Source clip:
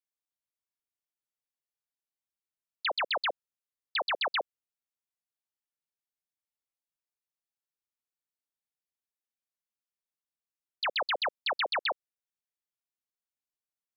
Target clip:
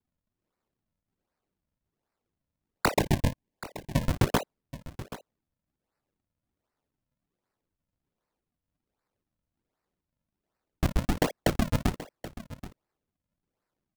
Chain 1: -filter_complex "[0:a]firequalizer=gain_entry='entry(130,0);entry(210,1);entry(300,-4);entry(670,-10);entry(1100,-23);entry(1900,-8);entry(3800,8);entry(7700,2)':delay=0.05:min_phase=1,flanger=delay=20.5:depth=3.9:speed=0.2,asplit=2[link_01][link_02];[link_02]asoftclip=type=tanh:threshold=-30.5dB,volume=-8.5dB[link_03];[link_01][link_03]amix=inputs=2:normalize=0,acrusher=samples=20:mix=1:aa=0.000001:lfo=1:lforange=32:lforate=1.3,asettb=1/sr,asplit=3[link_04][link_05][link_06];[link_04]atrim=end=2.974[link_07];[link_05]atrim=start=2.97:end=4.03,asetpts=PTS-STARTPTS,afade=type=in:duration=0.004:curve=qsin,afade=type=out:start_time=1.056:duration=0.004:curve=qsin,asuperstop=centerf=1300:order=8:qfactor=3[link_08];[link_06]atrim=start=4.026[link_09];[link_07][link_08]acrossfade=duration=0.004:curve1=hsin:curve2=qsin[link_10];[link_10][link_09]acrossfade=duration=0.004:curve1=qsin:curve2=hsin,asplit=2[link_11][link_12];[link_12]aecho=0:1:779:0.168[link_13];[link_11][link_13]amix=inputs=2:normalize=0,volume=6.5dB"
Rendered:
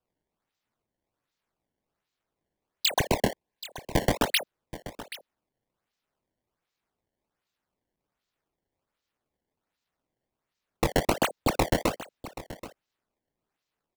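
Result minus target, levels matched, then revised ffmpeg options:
sample-and-hold swept by an LFO: distortion −11 dB
-filter_complex "[0:a]firequalizer=gain_entry='entry(130,0);entry(210,1);entry(300,-4);entry(670,-10);entry(1100,-23);entry(1900,-8);entry(3800,8);entry(7700,2)':delay=0.05:min_phase=1,flanger=delay=20.5:depth=3.9:speed=0.2,asplit=2[link_01][link_02];[link_02]asoftclip=type=tanh:threshold=-30.5dB,volume=-8.5dB[link_03];[link_01][link_03]amix=inputs=2:normalize=0,acrusher=samples=65:mix=1:aa=0.000001:lfo=1:lforange=104:lforate=1.3,asettb=1/sr,asplit=3[link_04][link_05][link_06];[link_04]atrim=end=2.974[link_07];[link_05]atrim=start=2.97:end=4.03,asetpts=PTS-STARTPTS,afade=type=in:duration=0.004:curve=qsin,afade=type=out:start_time=1.056:duration=0.004:curve=qsin,asuperstop=centerf=1300:order=8:qfactor=3[link_08];[link_06]atrim=start=4.026[link_09];[link_07][link_08]acrossfade=duration=0.004:curve1=hsin:curve2=qsin[link_10];[link_10][link_09]acrossfade=duration=0.004:curve1=qsin:curve2=hsin,asplit=2[link_11][link_12];[link_12]aecho=0:1:779:0.168[link_13];[link_11][link_13]amix=inputs=2:normalize=0,volume=6.5dB"

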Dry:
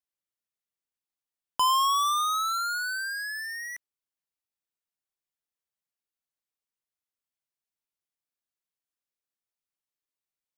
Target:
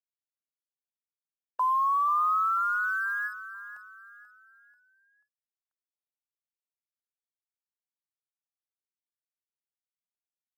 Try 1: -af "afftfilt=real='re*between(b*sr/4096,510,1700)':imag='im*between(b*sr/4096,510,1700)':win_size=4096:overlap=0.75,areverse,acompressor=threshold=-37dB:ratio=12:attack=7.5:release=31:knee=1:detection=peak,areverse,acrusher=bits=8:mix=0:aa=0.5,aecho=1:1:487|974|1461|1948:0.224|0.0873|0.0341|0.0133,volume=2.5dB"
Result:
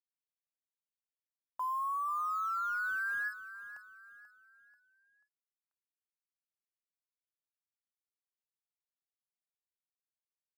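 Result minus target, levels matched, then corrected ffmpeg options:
downward compressor: peak gain reduction +9.5 dB
-af "afftfilt=real='re*between(b*sr/4096,510,1700)':imag='im*between(b*sr/4096,510,1700)':win_size=4096:overlap=0.75,areverse,acompressor=threshold=-26.5dB:ratio=12:attack=7.5:release=31:knee=1:detection=peak,areverse,acrusher=bits=8:mix=0:aa=0.5,aecho=1:1:487|974|1461|1948:0.224|0.0873|0.0341|0.0133,volume=2.5dB"

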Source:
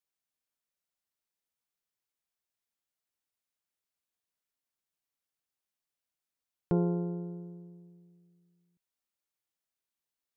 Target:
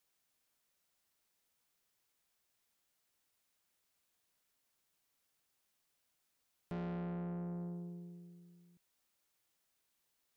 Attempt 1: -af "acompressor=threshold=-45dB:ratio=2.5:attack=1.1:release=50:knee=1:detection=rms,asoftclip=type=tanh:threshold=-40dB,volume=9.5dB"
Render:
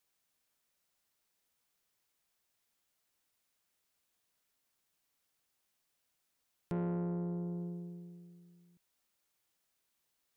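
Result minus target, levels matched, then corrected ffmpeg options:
soft clipping: distortion −7 dB
-af "acompressor=threshold=-45dB:ratio=2.5:attack=1.1:release=50:knee=1:detection=rms,asoftclip=type=tanh:threshold=-48dB,volume=9.5dB"

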